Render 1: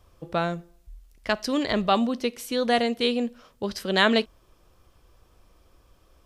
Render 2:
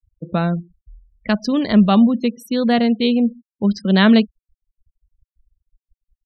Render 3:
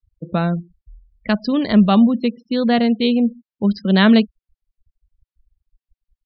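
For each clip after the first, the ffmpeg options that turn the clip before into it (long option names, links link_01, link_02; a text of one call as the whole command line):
ffmpeg -i in.wav -af "equalizer=frequency=200:width_type=o:width=0.73:gain=15,afftfilt=real='re*gte(hypot(re,im),0.0224)':imag='im*gte(hypot(re,im),0.0224)':win_size=1024:overlap=0.75,volume=2dB" out.wav
ffmpeg -i in.wav -af "aresample=11025,aresample=44100" out.wav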